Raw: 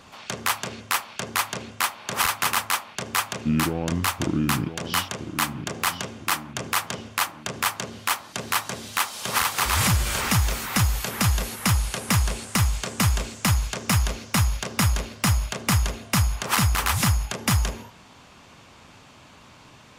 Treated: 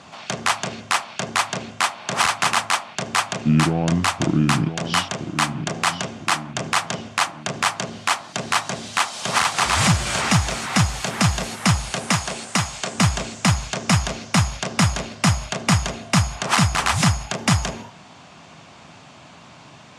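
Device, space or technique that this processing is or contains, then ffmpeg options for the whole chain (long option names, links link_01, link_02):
car door speaker: -filter_complex "[0:a]asettb=1/sr,asplit=3[link_01][link_02][link_03];[link_01]atrim=end=12.084[link_04];[link_02]atrim=start=12.08:end=12.95,asetpts=PTS-STARTPTS,afade=type=in:duration=0.004:curve=qsin,afade=type=out:start_time=0.866:duration=0.004:curve=qsin,highpass=frequency=240:poles=1[link_05];[link_03]atrim=start=12.946[link_06];[link_04][link_05]acrossfade=duration=0.004:curve1=hsin:curve2=qsin[link_07];[link_07][link_06]acrossfade=duration=0.004:curve1=qsin:curve2=hsin,highpass=99,equalizer=frequency=160:width_type=q:width=4:gain=6,equalizer=frequency=470:width_type=q:width=4:gain=-3,equalizer=frequency=690:width_type=q:width=4:gain=6,lowpass=frequency=8800:width=0.5412,lowpass=frequency=8800:width=1.3066,volume=4dB"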